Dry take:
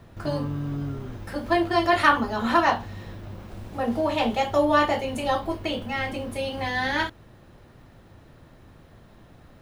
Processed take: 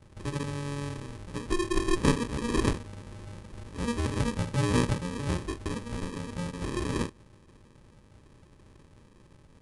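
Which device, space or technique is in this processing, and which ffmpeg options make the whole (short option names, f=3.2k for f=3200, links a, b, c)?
crushed at another speed: -af "asetrate=88200,aresample=44100,acrusher=samples=31:mix=1:aa=0.000001,asetrate=22050,aresample=44100,volume=-5dB"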